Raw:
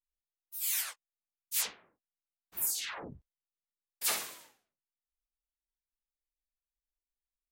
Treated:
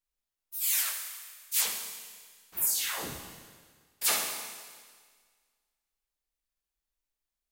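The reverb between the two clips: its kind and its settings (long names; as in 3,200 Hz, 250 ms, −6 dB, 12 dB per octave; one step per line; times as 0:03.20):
four-comb reverb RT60 1.7 s, combs from 28 ms, DRR 4.5 dB
level +4 dB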